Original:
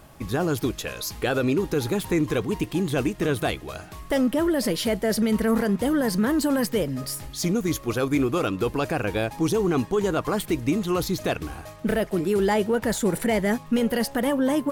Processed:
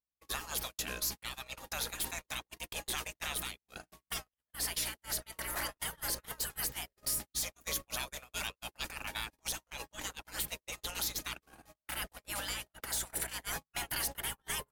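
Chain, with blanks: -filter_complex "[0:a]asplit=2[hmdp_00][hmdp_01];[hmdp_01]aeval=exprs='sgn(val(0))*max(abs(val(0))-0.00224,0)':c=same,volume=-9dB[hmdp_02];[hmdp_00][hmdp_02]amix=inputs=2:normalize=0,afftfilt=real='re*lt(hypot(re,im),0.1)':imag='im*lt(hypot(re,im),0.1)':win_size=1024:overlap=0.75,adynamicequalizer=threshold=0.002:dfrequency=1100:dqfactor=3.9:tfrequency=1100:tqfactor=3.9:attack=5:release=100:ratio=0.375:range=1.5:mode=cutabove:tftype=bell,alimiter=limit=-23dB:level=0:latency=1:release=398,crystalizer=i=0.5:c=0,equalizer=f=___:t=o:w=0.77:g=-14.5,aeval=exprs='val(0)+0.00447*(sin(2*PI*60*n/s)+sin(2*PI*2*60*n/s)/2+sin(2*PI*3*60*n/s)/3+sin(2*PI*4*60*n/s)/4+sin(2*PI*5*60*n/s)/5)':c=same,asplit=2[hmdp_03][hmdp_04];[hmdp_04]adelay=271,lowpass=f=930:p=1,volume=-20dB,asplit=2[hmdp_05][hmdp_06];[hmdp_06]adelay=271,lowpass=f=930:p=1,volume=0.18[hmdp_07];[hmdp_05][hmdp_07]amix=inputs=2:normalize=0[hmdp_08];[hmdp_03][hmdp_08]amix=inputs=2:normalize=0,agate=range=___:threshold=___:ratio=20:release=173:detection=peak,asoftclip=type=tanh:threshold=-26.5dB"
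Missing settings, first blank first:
100, -59dB, -37dB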